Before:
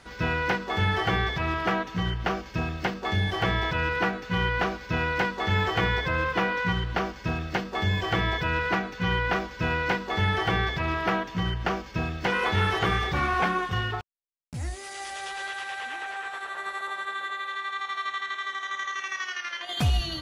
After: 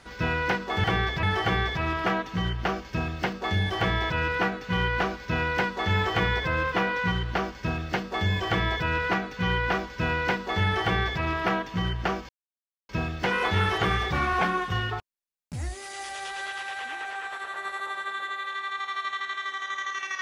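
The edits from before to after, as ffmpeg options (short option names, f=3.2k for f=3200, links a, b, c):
-filter_complex "[0:a]asplit=4[a][b][c][d];[a]atrim=end=0.842[e];[b]atrim=start=10.438:end=10.832[f];[c]atrim=start=0.838:end=11.9,asetpts=PTS-STARTPTS,afade=t=out:st=11.058:d=0.004:c=hsin,apad=pad_dur=0.6[g];[d]atrim=start=11.9,asetpts=PTS-STARTPTS,afade=t=in:d=0.004:c=hsin[h];[e][f]acrossfade=d=0.004:c1=hsin:c2=hsin[i];[g][h]concat=n=2:v=0:a=1[j];[i][j]acrossfade=d=0.004:c1=hsin:c2=hsin"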